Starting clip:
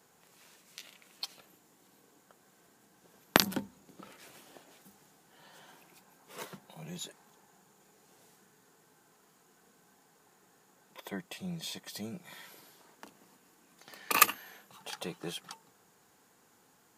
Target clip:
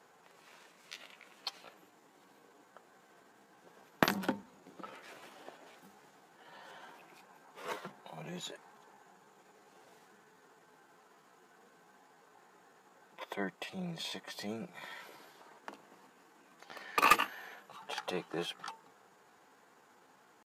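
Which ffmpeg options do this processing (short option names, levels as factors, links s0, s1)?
-filter_complex "[0:a]atempo=0.83,asplit=2[s0][s1];[s1]highpass=f=720:p=1,volume=7.94,asoftclip=type=tanh:threshold=0.75[s2];[s0][s2]amix=inputs=2:normalize=0,lowpass=f=1300:p=1,volume=0.501,volume=0.668"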